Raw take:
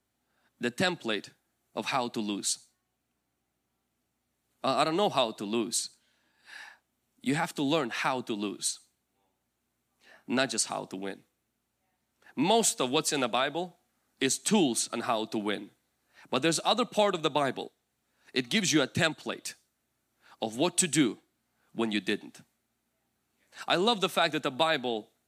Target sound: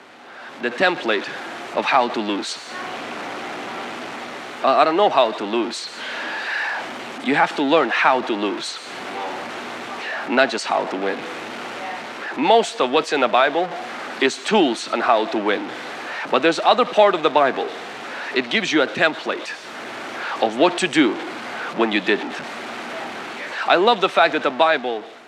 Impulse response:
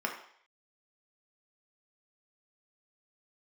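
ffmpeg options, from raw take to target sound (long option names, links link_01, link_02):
-af "aeval=exprs='val(0)+0.5*0.0237*sgn(val(0))':channel_layout=same,highpass=390,lowpass=2600,dynaudnorm=framelen=170:gausssize=7:maxgain=14.5dB"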